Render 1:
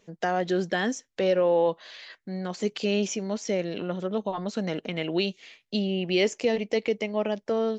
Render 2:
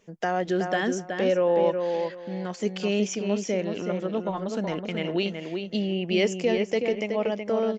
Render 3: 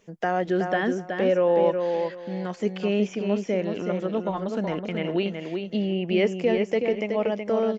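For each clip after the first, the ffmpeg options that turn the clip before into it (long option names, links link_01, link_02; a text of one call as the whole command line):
ffmpeg -i in.wav -filter_complex "[0:a]equalizer=frequency=4000:width=4.9:gain=-7.5,asplit=2[link_01][link_02];[link_02]adelay=373,lowpass=frequency=2600:poles=1,volume=-5dB,asplit=2[link_03][link_04];[link_04]adelay=373,lowpass=frequency=2600:poles=1,volume=0.22,asplit=2[link_05][link_06];[link_06]adelay=373,lowpass=frequency=2600:poles=1,volume=0.22[link_07];[link_01][link_03][link_05][link_07]amix=inputs=4:normalize=0" out.wav
ffmpeg -i in.wav -filter_complex "[0:a]acrossover=split=2900[link_01][link_02];[link_02]acompressor=threshold=-52dB:ratio=4:attack=1:release=60[link_03];[link_01][link_03]amix=inputs=2:normalize=0,volume=1.5dB" out.wav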